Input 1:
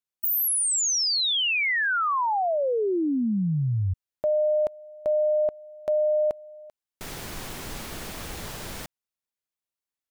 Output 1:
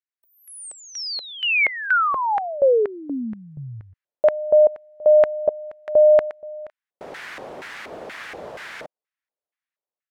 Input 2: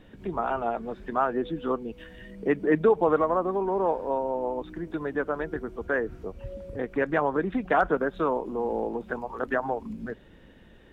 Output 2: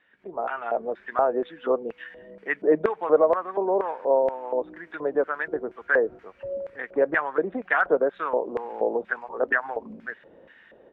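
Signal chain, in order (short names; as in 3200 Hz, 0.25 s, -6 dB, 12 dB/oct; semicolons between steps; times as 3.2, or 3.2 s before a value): AGC gain up to 11 dB; LFO band-pass square 2.1 Hz 570–1800 Hz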